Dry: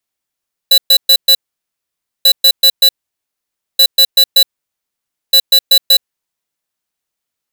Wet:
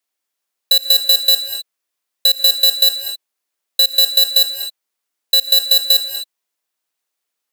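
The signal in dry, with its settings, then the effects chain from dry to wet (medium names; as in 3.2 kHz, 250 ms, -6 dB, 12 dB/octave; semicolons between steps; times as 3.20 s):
beep pattern square 3.96 kHz, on 0.07 s, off 0.12 s, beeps 4, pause 0.90 s, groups 4, -6.5 dBFS
high-pass 300 Hz 12 dB/octave; compression, threshold -11 dBFS; gated-style reverb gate 280 ms rising, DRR 6 dB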